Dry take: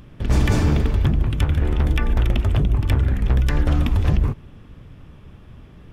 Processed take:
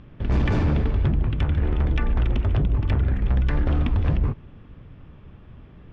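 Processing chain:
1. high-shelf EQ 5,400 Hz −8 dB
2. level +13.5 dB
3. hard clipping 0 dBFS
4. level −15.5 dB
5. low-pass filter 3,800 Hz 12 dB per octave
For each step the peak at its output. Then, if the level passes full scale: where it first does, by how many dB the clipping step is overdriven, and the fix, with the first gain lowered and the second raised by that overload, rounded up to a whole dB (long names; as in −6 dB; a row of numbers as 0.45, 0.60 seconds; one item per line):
−6.0, +7.5, 0.0, −15.5, −15.0 dBFS
step 2, 7.5 dB
step 2 +5.5 dB, step 4 −7.5 dB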